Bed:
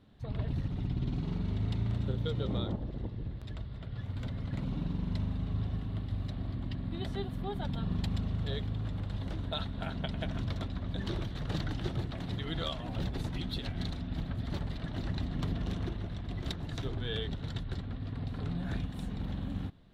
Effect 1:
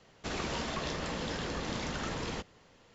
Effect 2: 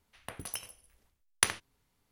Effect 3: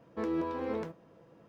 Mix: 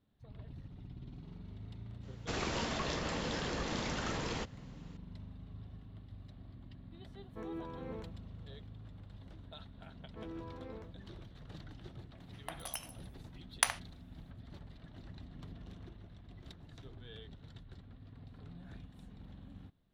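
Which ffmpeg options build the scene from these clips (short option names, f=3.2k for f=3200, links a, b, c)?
-filter_complex "[3:a]asplit=2[a][b];[0:a]volume=-15.5dB[c];[a]asuperstop=centerf=4900:order=4:qfactor=4[d];[2:a]lowshelf=f=480:t=q:w=3:g=-12.5[e];[1:a]atrim=end=2.94,asetpts=PTS-STARTPTS,volume=-1dB,afade=t=in:d=0.004:c=hsin,afade=t=out:st=2.936:d=0.004:c=hsin,adelay=2030[f];[d]atrim=end=1.48,asetpts=PTS-STARTPTS,volume=-11dB,afade=t=in:d=0.004:c=hsin,afade=t=out:st=1.476:d=0.004:c=hsin,adelay=7190[g];[b]atrim=end=1.48,asetpts=PTS-STARTPTS,volume=-14dB,afade=t=in:d=0.004:c=hsin,afade=t=out:st=1.476:d=0.004:c=hsin,adelay=9990[h];[e]atrim=end=2.11,asetpts=PTS-STARTPTS,volume=-3.5dB,afade=t=in:d=0.004:c=hsin,afade=t=out:st=2.106:d=0.004:c=hsin,adelay=538020S[i];[c][f][g][h][i]amix=inputs=5:normalize=0"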